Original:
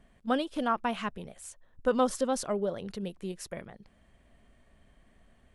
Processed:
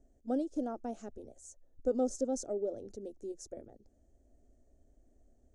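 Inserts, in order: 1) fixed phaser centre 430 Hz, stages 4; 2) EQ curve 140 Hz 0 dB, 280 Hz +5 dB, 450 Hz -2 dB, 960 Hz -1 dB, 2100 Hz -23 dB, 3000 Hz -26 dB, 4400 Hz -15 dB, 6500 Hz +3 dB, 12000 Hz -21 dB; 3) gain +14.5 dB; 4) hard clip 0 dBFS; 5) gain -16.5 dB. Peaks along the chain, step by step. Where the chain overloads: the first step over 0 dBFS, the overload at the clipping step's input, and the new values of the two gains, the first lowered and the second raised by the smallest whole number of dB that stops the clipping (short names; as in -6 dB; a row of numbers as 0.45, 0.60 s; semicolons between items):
-18.0, -19.0, -4.5, -4.5, -21.0 dBFS; no overload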